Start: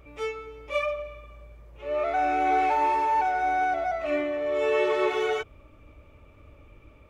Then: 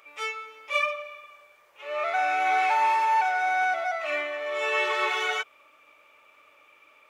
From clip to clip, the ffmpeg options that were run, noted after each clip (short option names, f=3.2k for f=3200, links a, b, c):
-af "highpass=1.1k,volume=6.5dB"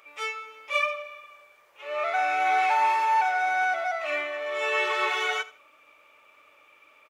-af "aecho=1:1:80|160:0.126|0.0315"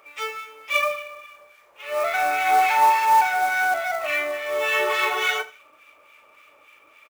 -filter_complex "[0:a]acrossover=split=1300[a][b];[a]aeval=exprs='val(0)*(1-0.7/2+0.7/2*cos(2*PI*3.5*n/s))':c=same[c];[b]aeval=exprs='val(0)*(1-0.7/2-0.7/2*cos(2*PI*3.5*n/s))':c=same[d];[c][d]amix=inputs=2:normalize=0,acrusher=bits=4:mode=log:mix=0:aa=0.000001,asplit=2[e][f];[f]adelay=37,volume=-13dB[g];[e][g]amix=inputs=2:normalize=0,volume=7dB"